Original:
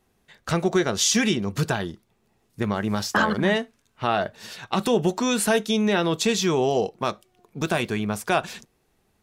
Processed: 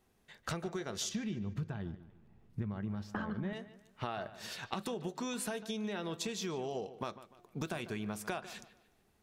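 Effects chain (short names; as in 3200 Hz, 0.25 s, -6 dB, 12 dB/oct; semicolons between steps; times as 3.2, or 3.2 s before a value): 1.09–3.53 tone controls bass +13 dB, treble -14 dB; compressor 12:1, threshold -30 dBFS, peak gain reduction 20.5 dB; dark delay 0.148 s, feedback 35%, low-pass 3900 Hz, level -14.5 dB; gain -5 dB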